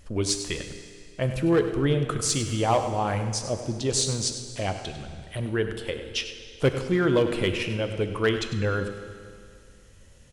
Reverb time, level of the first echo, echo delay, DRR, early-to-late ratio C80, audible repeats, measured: 2.2 s, -12.5 dB, 0.1 s, 6.5 dB, 8.0 dB, 1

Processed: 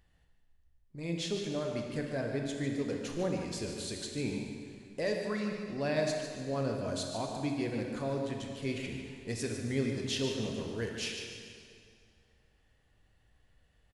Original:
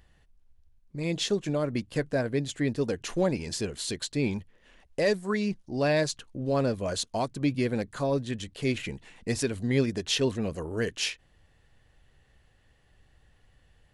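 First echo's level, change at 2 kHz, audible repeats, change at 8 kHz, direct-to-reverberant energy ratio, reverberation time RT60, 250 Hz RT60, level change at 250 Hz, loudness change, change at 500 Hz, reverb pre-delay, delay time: -9.0 dB, -6.0 dB, 1, -6.5 dB, 1.0 dB, 2.3 s, 2.3 s, -5.5 dB, -6.0 dB, -6.0 dB, 17 ms, 0.147 s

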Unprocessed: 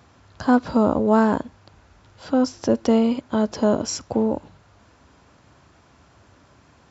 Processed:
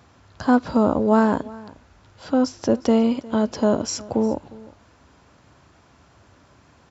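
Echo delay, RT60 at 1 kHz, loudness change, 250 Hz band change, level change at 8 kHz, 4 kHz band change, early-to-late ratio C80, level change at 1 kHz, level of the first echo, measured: 0.357 s, none, 0.0 dB, 0.0 dB, n/a, 0.0 dB, none, 0.0 dB, -21.0 dB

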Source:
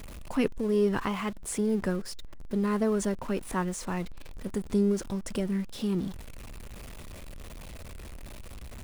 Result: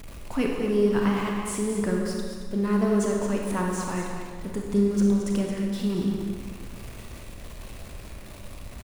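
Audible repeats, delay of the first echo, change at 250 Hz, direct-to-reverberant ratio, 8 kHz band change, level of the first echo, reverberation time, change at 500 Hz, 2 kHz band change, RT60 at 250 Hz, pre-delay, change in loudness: 1, 0.222 s, +4.5 dB, -1.0 dB, +3.0 dB, -8.5 dB, 1.6 s, +3.5 dB, +3.5 dB, 1.8 s, 30 ms, +4.0 dB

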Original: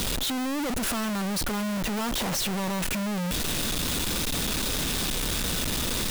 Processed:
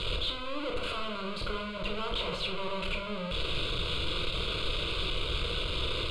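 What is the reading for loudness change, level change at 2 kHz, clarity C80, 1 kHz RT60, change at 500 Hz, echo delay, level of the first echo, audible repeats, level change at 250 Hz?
-6.0 dB, -3.5 dB, 9.5 dB, 0.65 s, -1.5 dB, none, none, none, -12.0 dB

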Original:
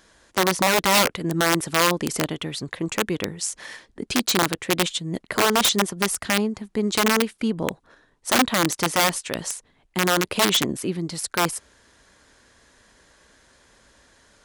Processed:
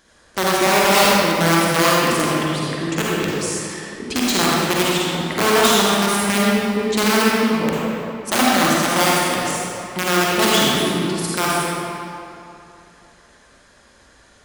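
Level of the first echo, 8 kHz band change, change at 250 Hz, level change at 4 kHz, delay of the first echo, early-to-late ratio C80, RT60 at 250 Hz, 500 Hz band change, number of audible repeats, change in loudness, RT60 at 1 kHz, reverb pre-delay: none, +3.0 dB, +6.0 dB, +4.0 dB, none, -3.0 dB, 2.7 s, +6.0 dB, none, +5.0 dB, 2.9 s, 39 ms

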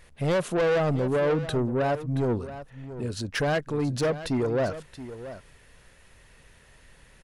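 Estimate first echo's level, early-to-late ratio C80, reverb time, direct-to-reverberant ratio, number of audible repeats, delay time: -13.5 dB, none, none, none, 1, 0.677 s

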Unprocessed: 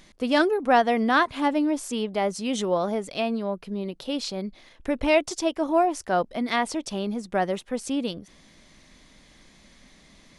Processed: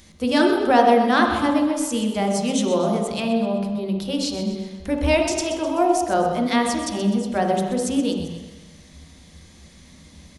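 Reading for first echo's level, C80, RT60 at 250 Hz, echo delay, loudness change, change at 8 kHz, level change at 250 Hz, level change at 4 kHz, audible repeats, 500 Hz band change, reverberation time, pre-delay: -11.0 dB, 4.5 dB, 1.2 s, 0.127 s, +4.5 dB, +7.5 dB, +6.0 dB, +4.0 dB, 2, +4.0 dB, 1.2 s, 3 ms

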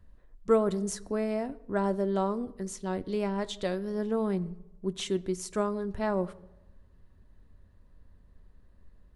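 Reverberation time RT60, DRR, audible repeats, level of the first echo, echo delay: 0.95 s, 11.0 dB, none, none, none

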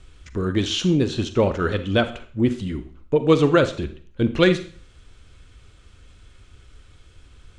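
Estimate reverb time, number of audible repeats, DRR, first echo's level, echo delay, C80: 0.45 s, none, 10.0 dB, none, none, 16.5 dB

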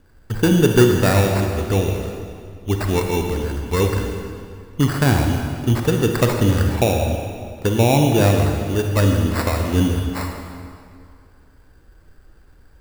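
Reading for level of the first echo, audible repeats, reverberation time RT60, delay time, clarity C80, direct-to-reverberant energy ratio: none, none, 2.2 s, none, 4.5 dB, 2.5 dB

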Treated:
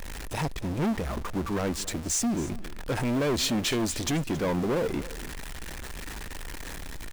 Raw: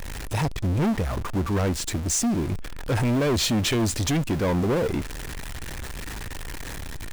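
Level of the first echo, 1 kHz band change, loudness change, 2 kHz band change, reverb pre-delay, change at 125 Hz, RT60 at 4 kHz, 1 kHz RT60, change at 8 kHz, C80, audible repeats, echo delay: -17.0 dB, -3.0 dB, -4.5 dB, -3.0 dB, none, -7.5 dB, none, none, -3.0 dB, none, 1, 0.273 s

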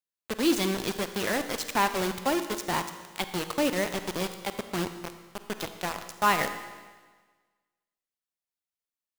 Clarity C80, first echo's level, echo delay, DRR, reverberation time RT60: 11.0 dB, none, none, 9.0 dB, 1.4 s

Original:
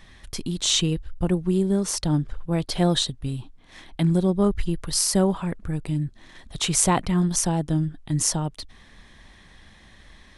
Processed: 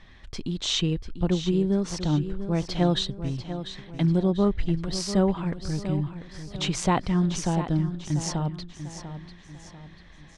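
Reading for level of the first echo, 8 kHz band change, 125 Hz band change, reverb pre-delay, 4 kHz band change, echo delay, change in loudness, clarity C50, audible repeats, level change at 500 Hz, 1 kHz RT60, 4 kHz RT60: -11.0 dB, -11.5 dB, -1.0 dB, none, -4.0 dB, 0.693 s, -3.0 dB, none, 4, -1.5 dB, none, none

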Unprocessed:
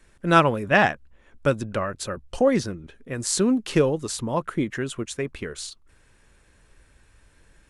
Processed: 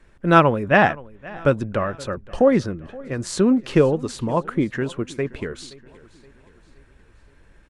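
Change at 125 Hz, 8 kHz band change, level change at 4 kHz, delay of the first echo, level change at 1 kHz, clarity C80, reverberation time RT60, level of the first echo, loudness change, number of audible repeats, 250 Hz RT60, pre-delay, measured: +4.0 dB, -7.0 dB, -2.0 dB, 0.523 s, +3.0 dB, none, none, -21.5 dB, +3.0 dB, 3, none, none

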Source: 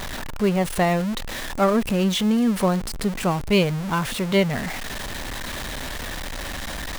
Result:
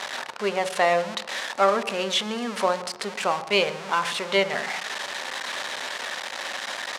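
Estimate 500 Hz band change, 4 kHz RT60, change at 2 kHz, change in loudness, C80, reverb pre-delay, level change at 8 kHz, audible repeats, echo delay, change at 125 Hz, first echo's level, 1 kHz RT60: -1.0 dB, 1.3 s, +2.5 dB, -2.0 dB, 15.5 dB, 3 ms, -1.5 dB, 1, 0.128 s, -17.5 dB, -21.0 dB, 1.2 s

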